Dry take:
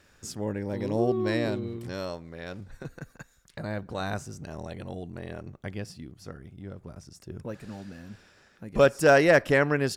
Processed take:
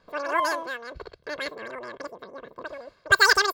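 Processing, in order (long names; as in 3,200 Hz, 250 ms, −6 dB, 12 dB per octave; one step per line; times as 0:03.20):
low-pass that shuts in the quiet parts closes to 880 Hz, open at −17 dBFS
comb filter 5.2 ms, depth 57%
change of speed 2.82×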